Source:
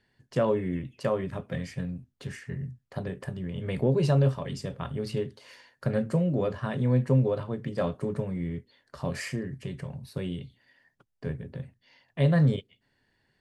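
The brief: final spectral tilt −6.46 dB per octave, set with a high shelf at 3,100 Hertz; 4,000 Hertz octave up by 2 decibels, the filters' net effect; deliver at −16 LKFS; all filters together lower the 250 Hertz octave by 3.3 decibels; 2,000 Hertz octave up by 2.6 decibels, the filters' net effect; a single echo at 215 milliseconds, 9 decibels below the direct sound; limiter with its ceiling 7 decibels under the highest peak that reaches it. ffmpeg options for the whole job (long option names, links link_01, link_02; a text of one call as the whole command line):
ffmpeg -i in.wav -af "equalizer=frequency=250:width_type=o:gain=-5.5,equalizer=frequency=2000:width_type=o:gain=4,highshelf=frequency=3100:gain=-7,equalizer=frequency=4000:width_type=o:gain=6.5,alimiter=limit=-20.5dB:level=0:latency=1,aecho=1:1:215:0.355,volume=17dB" out.wav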